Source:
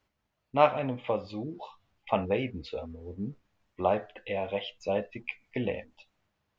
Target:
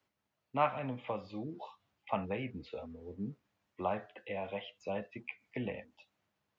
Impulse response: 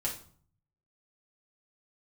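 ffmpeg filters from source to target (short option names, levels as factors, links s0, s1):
-filter_complex "[0:a]acrossover=split=2700[s0][s1];[s1]acompressor=threshold=0.00158:ratio=4:attack=1:release=60[s2];[s0][s2]amix=inputs=2:normalize=0,highpass=110,acrossover=split=250|740|980[s3][s4][s5][s6];[s4]acompressor=threshold=0.0112:ratio=6[s7];[s3][s7][s5][s6]amix=inputs=4:normalize=0,volume=0.668"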